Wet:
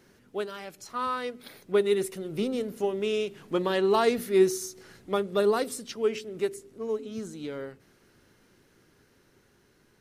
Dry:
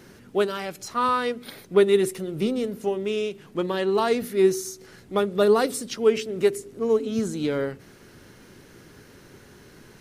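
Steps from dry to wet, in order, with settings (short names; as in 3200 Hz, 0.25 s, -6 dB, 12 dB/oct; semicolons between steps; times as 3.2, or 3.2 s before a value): Doppler pass-by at 3.72, 5 m/s, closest 6.3 m; bell 130 Hz -2.5 dB 2.2 oct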